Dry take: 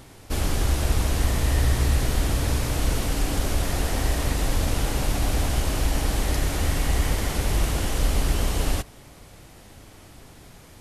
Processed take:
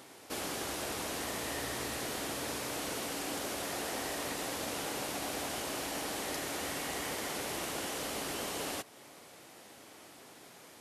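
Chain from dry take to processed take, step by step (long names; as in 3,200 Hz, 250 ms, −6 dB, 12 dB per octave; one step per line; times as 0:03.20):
high-pass filter 300 Hz 12 dB per octave
in parallel at −1 dB: downward compressor, threshold −40 dBFS, peak gain reduction 12 dB
on the sum: level −8.5 dB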